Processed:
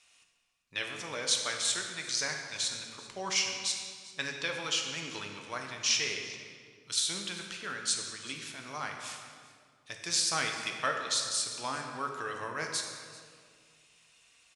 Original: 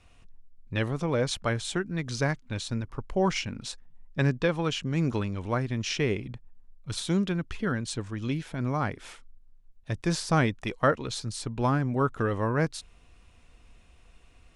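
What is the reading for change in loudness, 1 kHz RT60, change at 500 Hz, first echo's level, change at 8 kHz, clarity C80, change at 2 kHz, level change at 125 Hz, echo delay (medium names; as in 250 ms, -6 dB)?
-3.0 dB, 1.9 s, -12.0 dB, -19.0 dB, +8.5 dB, 5.0 dB, -1.0 dB, -22.0 dB, 390 ms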